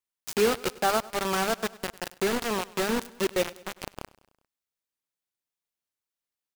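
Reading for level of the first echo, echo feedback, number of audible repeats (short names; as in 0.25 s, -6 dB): -21.0 dB, 56%, 3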